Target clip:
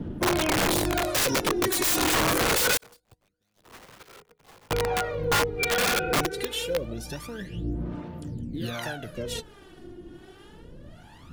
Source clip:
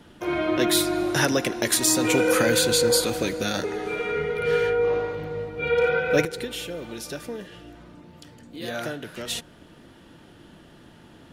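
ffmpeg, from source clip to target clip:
ffmpeg -i in.wav -filter_complex "[0:a]asettb=1/sr,asplit=3[link_01][link_02][link_03];[link_01]atrim=end=0.774[link_04];[link_02]atrim=start=0.77:end=1.4,asetpts=PTS-STARTPTS,afade=type=in:duration=0.004:curve=qsin,afade=type=out:start_time=0.626:duration=0.004:curve=qsin,volume=16.5dB,asoftclip=hard,volume=-16.5dB[link_05];[link_03]atrim=start=1.396[link_06];[link_04][link_05]acrossfade=duration=0.004:curve1=hsin:curve2=qsin[link_07];[link_07][link_06]acrossfade=duration=0.004:curve1=qsin:curve2=hsin,lowshelf=frequency=440:gain=10.5,aphaser=in_gain=1:out_gain=1:delay=2.8:decay=0.75:speed=0.25:type=sinusoidal,alimiter=limit=-7dB:level=0:latency=1:release=122,acrossover=split=550[link_08][link_09];[link_08]aeval=exprs='val(0)*(1-0.7/2+0.7/2*cos(2*PI*1.3*n/s))':channel_layout=same[link_10];[link_09]aeval=exprs='val(0)*(1-0.7/2-0.7/2*cos(2*PI*1.3*n/s))':channel_layout=same[link_11];[link_10][link_11]amix=inputs=2:normalize=0,aeval=exprs='(mod(6.31*val(0)+1,2)-1)/6.31':channel_layout=same,asettb=1/sr,asplit=3[link_12][link_13][link_14];[link_12]atrim=end=2.774[link_15];[link_13]atrim=start=2.77:end=4.71,asetpts=PTS-STARTPTS,afade=type=in:duration=0.004:curve=qsin,afade=type=out:start_time=1.936:duration=0.004:curve=qsin,agate=range=-50dB:threshold=-17dB:ratio=16:detection=peak[link_16];[link_14]atrim=start=4.706[link_17];[link_15][link_16]acrossfade=duration=0.004:curve1=hsin:curve2=qsin[link_18];[link_18][link_17]acrossfade=duration=0.004:curve1=qsin:curve2=hsin,volume=-2dB" out.wav

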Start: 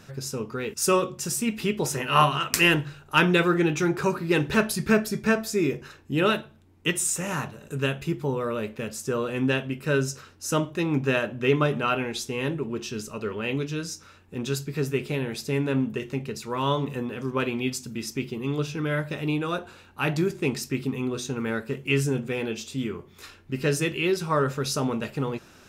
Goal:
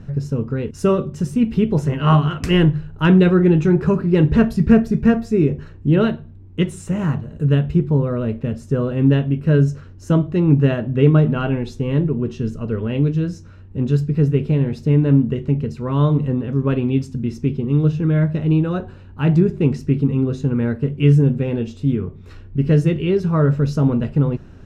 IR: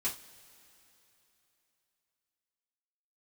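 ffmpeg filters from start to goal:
-af "lowshelf=frequency=420:gain=6.5,asetrate=45938,aresample=44100,aemphasis=mode=reproduction:type=riaa,volume=-1.5dB"

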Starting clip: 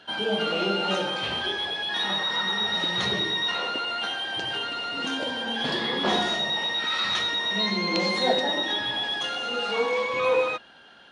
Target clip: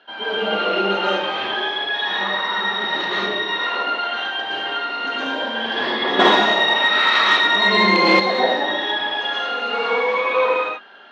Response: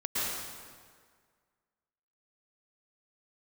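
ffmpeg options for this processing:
-filter_complex "[0:a]highpass=340,lowpass=3000[link_01];[1:a]atrim=start_sample=2205,afade=type=out:start_time=0.27:duration=0.01,atrim=end_sample=12348[link_02];[link_01][link_02]afir=irnorm=-1:irlink=0,asettb=1/sr,asplit=3[link_03][link_04][link_05];[link_03]atrim=end=6.194[link_06];[link_04]atrim=start=6.19:end=8.2,asetpts=PTS-STARTPTS,afade=type=in:duration=0.004:curve=qsin,afade=type=out:start_time=2.006:duration=0.004:curve=qsin,acontrast=66[link_07];[link_05]atrim=start=8.196[link_08];[link_06][link_07]acrossfade=duration=0.004:curve1=hsin:curve2=qsin[link_09];[link_09][link_08]acrossfade=duration=0.004:curve1=qsin:curve2=hsin,volume=1.5dB"

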